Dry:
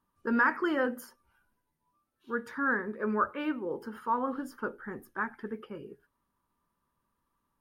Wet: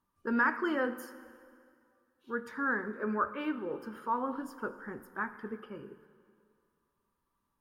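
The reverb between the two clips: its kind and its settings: plate-style reverb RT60 2.2 s, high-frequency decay 0.85×, DRR 12.5 dB; trim -2.5 dB

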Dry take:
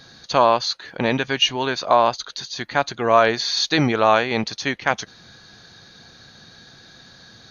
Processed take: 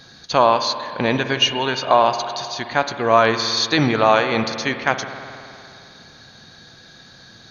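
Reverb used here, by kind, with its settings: spring tank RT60 2.7 s, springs 53 ms, chirp 75 ms, DRR 8.5 dB; trim +1 dB

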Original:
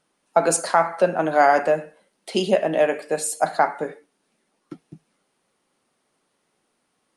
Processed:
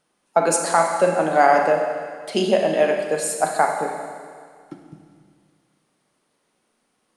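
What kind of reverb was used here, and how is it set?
Schroeder reverb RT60 2 s, combs from 31 ms, DRR 4 dB

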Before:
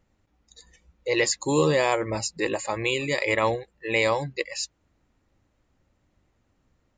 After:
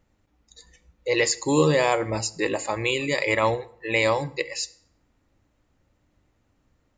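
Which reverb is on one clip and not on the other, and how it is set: FDN reverb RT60 0.62 s, low-frequency decay 1×, high-frequency decay 0.8×, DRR 14 dB; trim +1 dB

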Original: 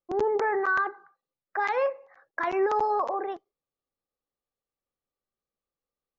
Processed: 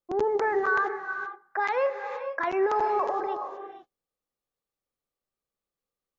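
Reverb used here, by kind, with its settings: gated-style reverb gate 500 ms rising, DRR 8 dB

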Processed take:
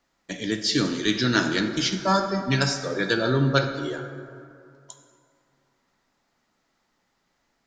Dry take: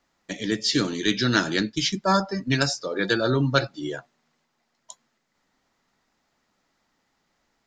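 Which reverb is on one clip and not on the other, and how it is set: plate-style reverb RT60 2.4 s, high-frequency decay 0.45×, DRR 6 dB; trim -1 dB

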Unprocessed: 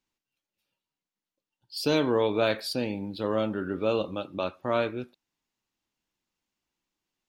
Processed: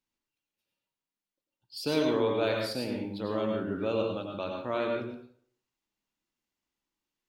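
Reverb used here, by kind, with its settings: plate-style reverb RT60 0.58 s, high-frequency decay 0.7×, pre-delay 80 ms, DRR 1 dB; trim -5.5 dB

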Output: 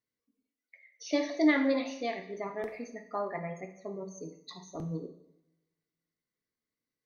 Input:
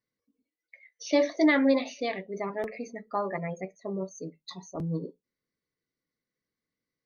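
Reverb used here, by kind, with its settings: two-slope reverb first 0.7 s, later 1.8 s, from -26 dB, DRR 5.5 dB; trim -4.5 dB

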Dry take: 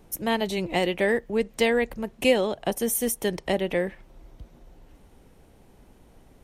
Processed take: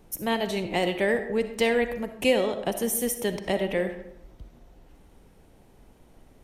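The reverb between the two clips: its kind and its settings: algorithmic reverb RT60 0.83 s, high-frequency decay 0.55×, pre-delay 20 ms, DRR 8.5 dB; trim -1.5 dB

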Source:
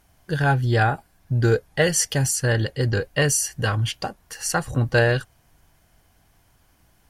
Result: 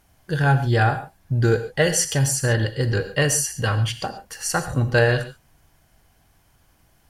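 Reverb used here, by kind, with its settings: gated-style reverb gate 160 ms flat, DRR 9 dB

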